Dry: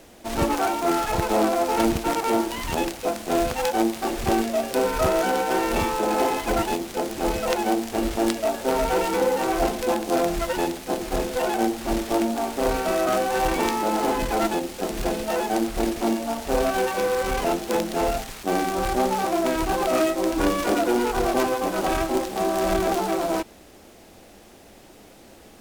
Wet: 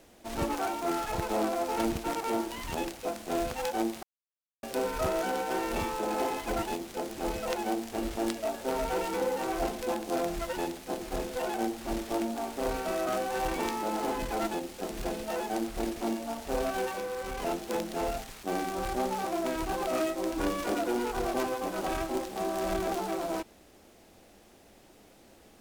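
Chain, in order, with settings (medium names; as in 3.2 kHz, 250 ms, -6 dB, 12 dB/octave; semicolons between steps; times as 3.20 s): 4.03–4.63 s: mute; 16.93–17.40 s: compression 3:1, threshold -25 dBFS, peak gain reduction 4.5 dB; trim -8.5 dB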